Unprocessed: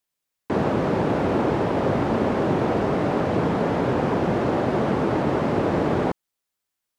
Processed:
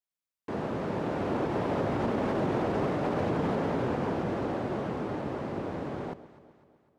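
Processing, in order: Doppler pass-by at 2.73 s, 12 m/s, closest 12 m; peak limiter -17 dBFS, peak gain reduction 5.5 dB; on a send: echo whose repeats swap between lows and highs 126 ms, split 830 Hz, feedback 69%, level -13.5 dB; on the sum: trim -3.5 dB

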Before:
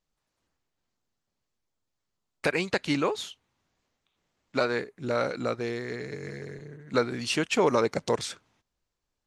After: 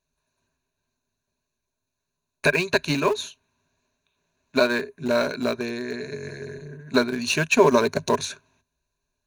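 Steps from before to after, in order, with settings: rippled EQ curve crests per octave 1.5, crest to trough 14 dB; in parallel at -11.5 dB: small samples zeroed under -23 dBFS; on the sum: trim +1.5 dB

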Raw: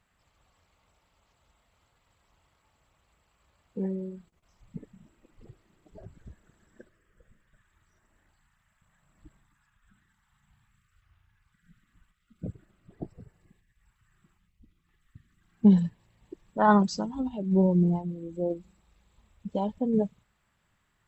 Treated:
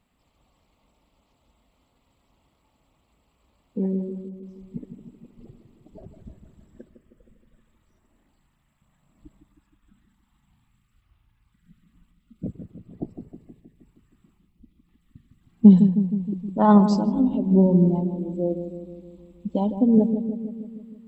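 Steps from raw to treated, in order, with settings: fifteen-band graphic EQ 100 Hz -4 dB, 250 Hz +8 dB, 1.6 kHz -11 dB, 6.3 kHz -7 dB; filtered feedback delay 157 ms, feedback 67%, low-pass 840 Hz, level -8 dB; trim +3 dB

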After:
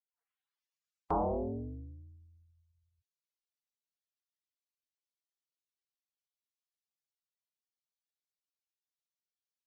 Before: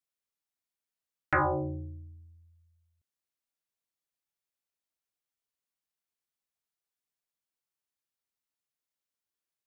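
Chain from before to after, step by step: tape start-up on the opening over 2.06 s; trim -6 dB; Vorbis 32 kbps 22.05 kHz

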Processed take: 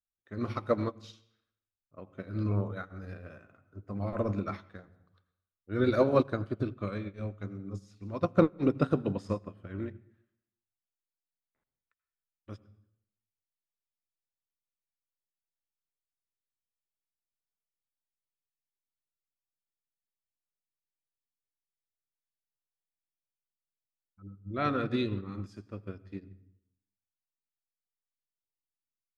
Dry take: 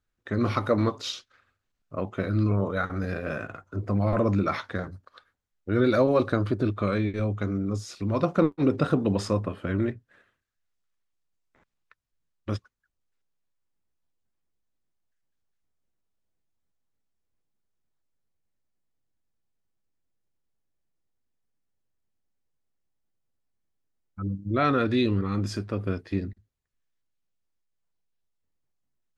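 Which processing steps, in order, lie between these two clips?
on a send at -12 dB: tone controls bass +11 dB, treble -6 dB + reverberation RT60 0.80 s, pre-delay 79 ms; on the sum: upward expansion 2.5:1, over -32 dBFS

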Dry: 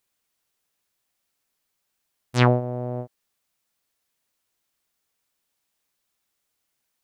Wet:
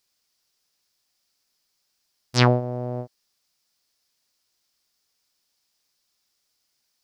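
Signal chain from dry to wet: peaking EQ 5 kHz +12.5 dB 0.68 oct

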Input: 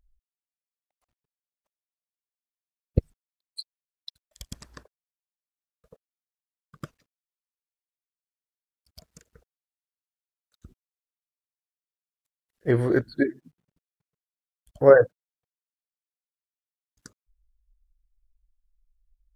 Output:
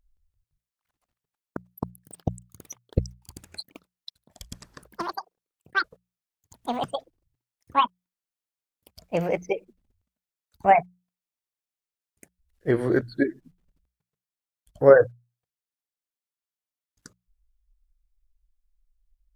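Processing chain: ever faster or slower copies 170 ms, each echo +6 st, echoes 3; hum notches 60/120/180 Hz

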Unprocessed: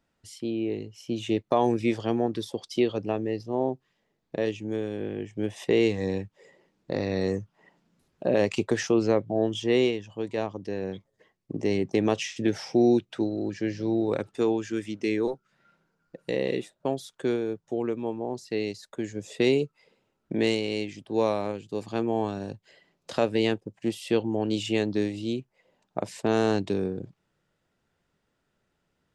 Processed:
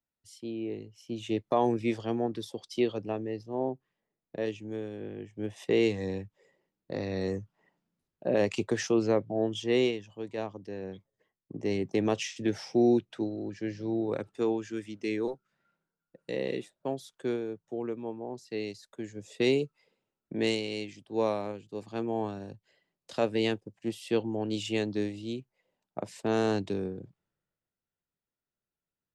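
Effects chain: three bands expanded up and down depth 40%; trim -4.5 dB

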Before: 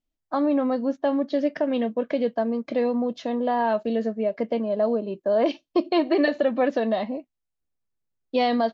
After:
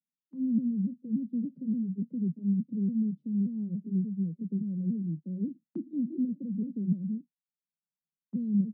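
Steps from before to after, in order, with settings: sawtooth pitch modulation -4 st, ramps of 288 ms; inverse Chebyshev low-pass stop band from 650 Hz, stop band 60 dB; gate -55 dBFS, range -8 dB; steep high-pass 150 Hz 72 dB/octave; trim +5.5 dB

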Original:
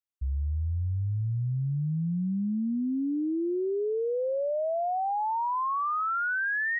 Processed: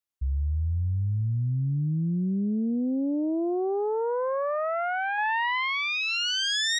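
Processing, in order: self-modulated delay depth 0.23 ms; 5.18–6.31 s: fifteen-band graphic EQ 160 Hz +6 dB, 400 Hz +11 dB, 1 kHz +5 dB; trim +2.5 dB

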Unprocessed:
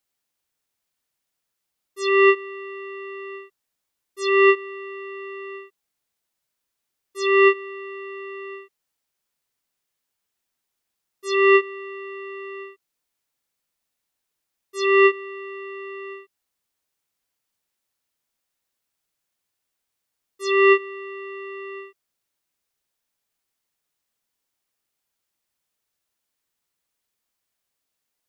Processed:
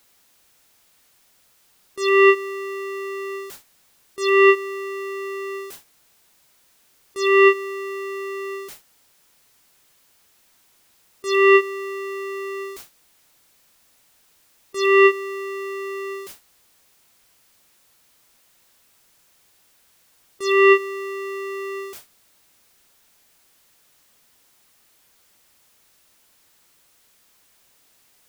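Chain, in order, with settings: jump at every zero crossing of -33.5 dBFS; gate with hold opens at -32 dBFS; trim +1.5 dB

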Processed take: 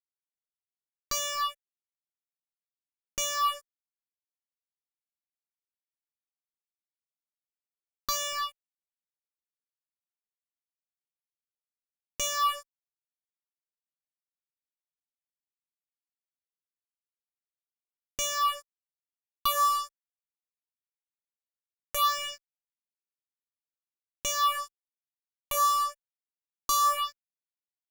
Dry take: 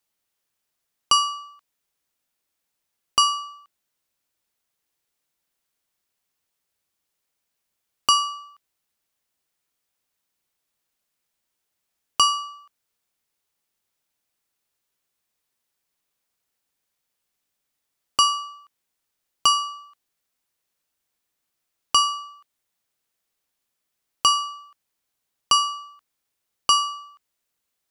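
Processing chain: de-hum 70.17 Hz, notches 13; fuzz box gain 43 dB, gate -45 dBFS; phase shifter stages 6, 1 Hz, lowest notch 140–1200 Hz; trim -8.5 dB

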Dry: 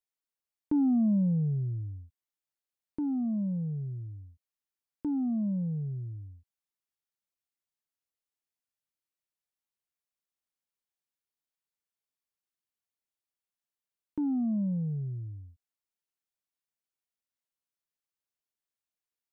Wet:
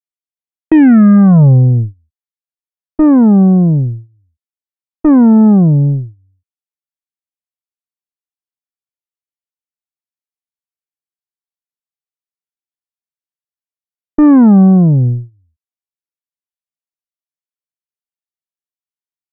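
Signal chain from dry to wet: gate -36 dBFS, range -32 dB; Chebyshev shaper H 6 -20 dB, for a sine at -21.5 dBFS; wow and flutter 120 cents; loudness maximiser +24.5 dB; trim -1 dB

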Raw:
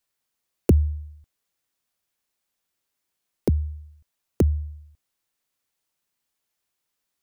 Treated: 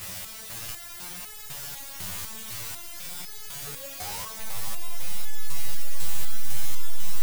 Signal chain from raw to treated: pitch bend over the whole clip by +11 st starting unshifted; spectral gate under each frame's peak -30 dB weak; in parallel at -2.5 dB: compression 6:1, threshold -58 dBFS, peak gain reduction 23 dB; on the sum: painted sound rise, 3.66–4.31 s, 420–1200 Hz -35 dBFS; hysteresis with a dead band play -30.5 dBFS; word length cut 6-bit, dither triangular; resonant low shelf 200 Hz +8.5 dB, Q 1.5; echo with a slow build-up 87 ms, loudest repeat 5, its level -12 dB; resonator arpeggio 4 Hz 91–430 Hz; trim +8 dB

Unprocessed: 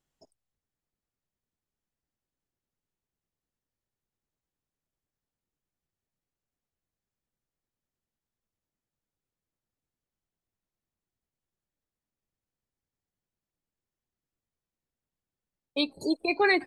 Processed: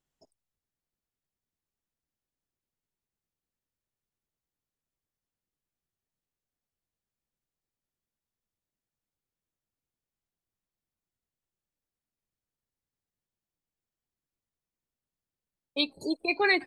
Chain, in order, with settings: dynamic bell 3.2 kHz, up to +6 dB, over -37 dBFS, Q 0.89; trim -3 dB

